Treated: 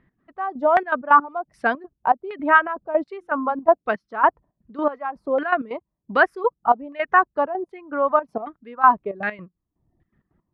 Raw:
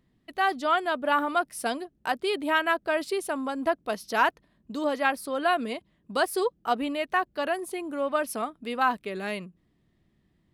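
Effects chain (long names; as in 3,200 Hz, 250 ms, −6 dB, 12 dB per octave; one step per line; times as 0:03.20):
reverb reduction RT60 0.84 s
gate pattern "x.x...xxx." 163 BPM −12 dB
auto-filter low-pass saw down 1.3 Hz 700–1,900 Hz
0:03.04–0:03.63: mains-hum notches 50/100/150/200/250/300/350 Hz
level +5.5 dB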